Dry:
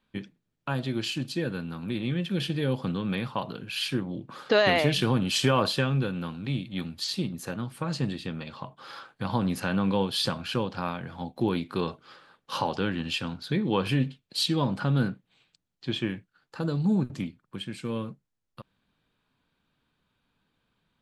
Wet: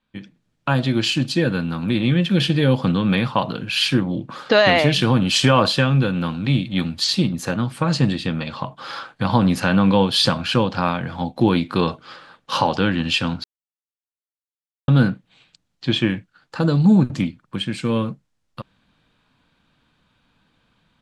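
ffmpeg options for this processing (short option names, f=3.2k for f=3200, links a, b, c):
-filter_complex "[0:a]asplit=3[a][b][c];[a]atrim=end=13.44,asetpts=PTS-STARTPTS,afade=t=out:st=13.436:d=0.004:c=hsin[d];[b]atrim=start=13.44:end=14.88,asetpts=PTS-STARTPTS,volume=0[e];[c]atrim=start=14.88,asetpts=PTS-STARTPTS,afade=t=in:d=0.004:c=hsin[f];[d][e][f]concat=n=3:v=0:a=1,lowpass=8.7k,equalizer=f=400:w=7.9:g=-8,dynaudnorm=f=210:g=3:m=12.5dB,volume=-1dB"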